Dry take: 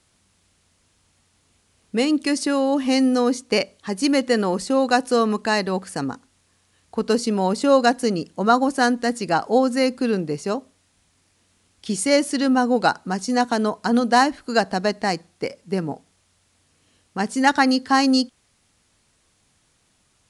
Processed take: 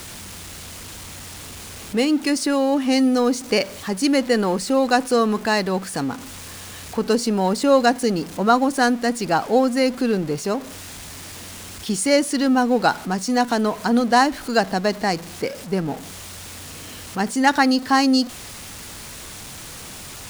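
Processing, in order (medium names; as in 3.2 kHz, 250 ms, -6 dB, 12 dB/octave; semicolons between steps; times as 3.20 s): jump at every zero crossing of -31 dBFS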